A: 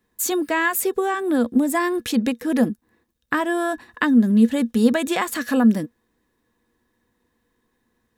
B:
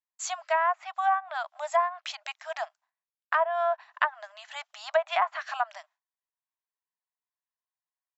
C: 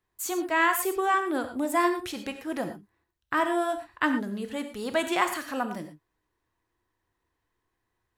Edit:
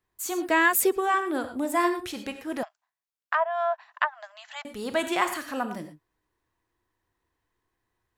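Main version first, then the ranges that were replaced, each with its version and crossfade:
C
0.49–0.95 from A, crossfade 0.10 s
2.63–4.65 from B

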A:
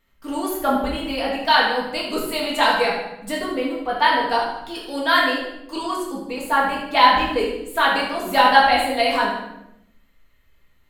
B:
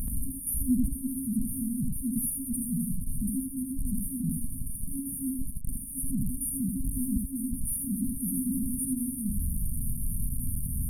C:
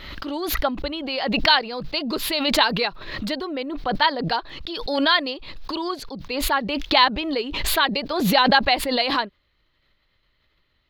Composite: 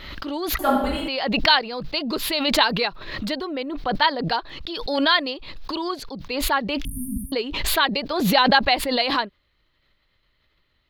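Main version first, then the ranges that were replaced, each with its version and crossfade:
C
0.59–1.08 from A
6.85–7.32 from B

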